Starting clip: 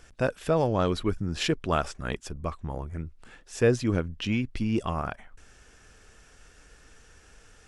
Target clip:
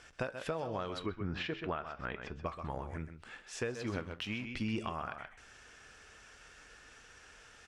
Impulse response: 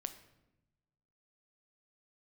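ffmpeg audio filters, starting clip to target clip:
-filter_complex "[0:a]aecho=1:1:129:0.299,flanger=delay=7.9:depth=2.9:regen=-79:speed=0.28:shape=sinusoidal,asettb=1/sr,asplit=3[a][b][c];[a]atrim=end=1.064[d];[b]atrim=start=1.06:end=2.46,asetpts=PTS-STARTPTS,afade=t=in:d=0.004:c=qsin,afade=t=out:st=1.396:d=0.004:c=qsin,lowpass=2.4k[e];[c]atrim=start=2.456[f];[d][e]acrossfade=d=0.004:c1=hsin:c2=qsin[g];[g][f]acrossfade=d=0.004:c1=qsin:c2=hsin,asettb=1/sr,asplit=3[h][i][j];[h]atrim=end=3.674[k];[i]atrim=start=3.67:end=4.45,asetpts=PTS-STARTPTS,afade=t=in:d=0.004:c=qsin,afade=t=out:st=0.776:d=0.004:c=qsin,aeval=exprs='sgn(val(0))*max(abs(val(0))-0.00376,0)':c=same[l];[j]atrim=start=4.446[m];[k][l]acrossfade=d=0.004:c1=hsin:c2=qsin[n];[n][m]acrossfade=d=0.004:c1=qsin:c2=hsin,highpass=f=1.5k:p=1,acompressor=threshold=-45dB:ratio=8,aemphasis=mode=reproduction:type=bsi,volume=10dB"

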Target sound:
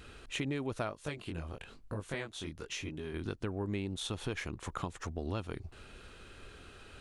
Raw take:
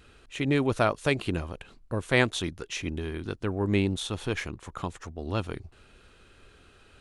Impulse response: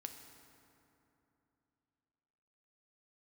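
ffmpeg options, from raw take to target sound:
-filter_complex "[0:a]acompressor=threshold=-38dB:ratio=5,asplit=3[a][b][c];[a]afade=t=out:st=0.89:d=0.02[d];[b]flanger=delay=19.5:depth=5.6:speed=1,afade=t=in:st=0.89:d=0.02,afade=t=out:st=3.13:d=0.02[e];[c]afade=t=in:st=3.13:d=0.02[f];[d][e][f]amix=inputs=3:normalize=0,volume=3.5dB"

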